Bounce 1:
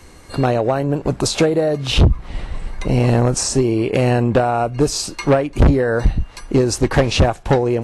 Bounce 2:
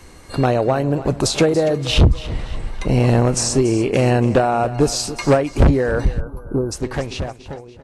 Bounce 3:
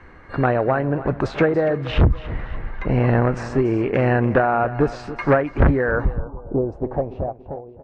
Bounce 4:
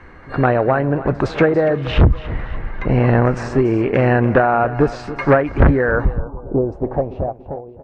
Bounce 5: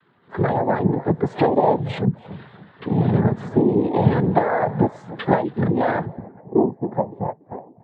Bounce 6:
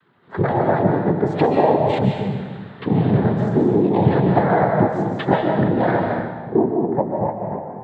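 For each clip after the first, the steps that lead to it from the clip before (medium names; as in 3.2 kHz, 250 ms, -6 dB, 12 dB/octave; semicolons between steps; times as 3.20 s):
fade out at the end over 2.35 s; feedback delay 285 ms, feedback 41%, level -15 dB; time-frequency box 6.21–6.72 s, 1.6–10 kHz -29 dB
low-pass sweep 1.7 kHz -> 700 Hz, 5.79–6.55 s; trim -3 dB
reverse echo 112 ms -22.5 dB; trim +3.5 dB
compression 3:1, threshold -14 dBFS, peak gain reduction 5.5 dB; noise-vocoded speech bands 6; spectral contrast expander 1.5:1
recorder AGC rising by 5.3 dB/s; reverberation RT60 1.3 s, pre-delay 100 ms, DRR 1.5 dB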